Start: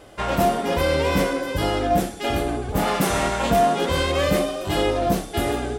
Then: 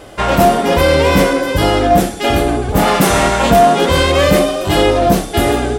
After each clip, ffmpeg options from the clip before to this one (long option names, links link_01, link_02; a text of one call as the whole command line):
ffmpeg -i in.wav -af "acontrast=84,volume=3dB" out.wav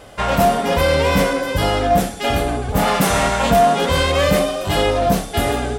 ffmpeg -i in.wav -af "equalizer=frequency=340:width_type=o:width=0.35:gain=-9.5,volume=-4dB" out.wav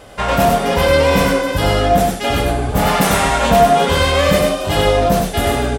ffmpeg -i in.wav -af "aecho=1:1:98:0.668,volume=1dB" out.wav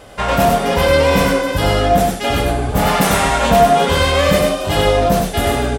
ffmpeg -i in.wav -af anull out.wav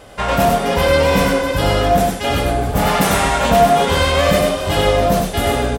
ffmpeg -i in.wav -af "aecho=1:1:657:0.211,volume=-1dB" out.wav